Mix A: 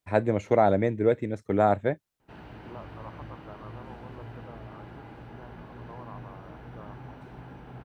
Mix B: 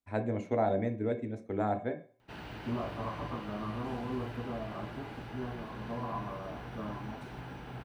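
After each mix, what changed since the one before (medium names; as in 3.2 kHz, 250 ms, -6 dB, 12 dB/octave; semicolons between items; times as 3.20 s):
first voice -9.5 dB; background: add treble shelf 2.2 kHz +11 dB; reverb: on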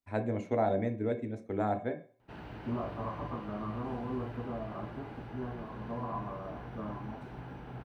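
background: add treble shelf 2.2 kHz -11 dB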